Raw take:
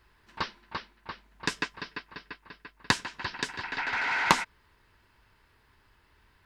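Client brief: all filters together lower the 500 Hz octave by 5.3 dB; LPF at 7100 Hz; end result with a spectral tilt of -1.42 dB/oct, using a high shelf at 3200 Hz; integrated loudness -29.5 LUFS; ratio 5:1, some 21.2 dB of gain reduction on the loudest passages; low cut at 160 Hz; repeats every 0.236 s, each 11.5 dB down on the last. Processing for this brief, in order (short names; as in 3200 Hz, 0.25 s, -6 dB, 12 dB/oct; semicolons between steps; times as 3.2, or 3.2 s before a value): HPF 160 Hz; LPF 7100 Hz; bell 500 Hz -7 dB; high shelf 3200 Hz +3.5 dB; compressor 5:1, threshold -44 dBFS; feedback echo 0.236 s, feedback 27%, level -11.5 dB; gain +17 dB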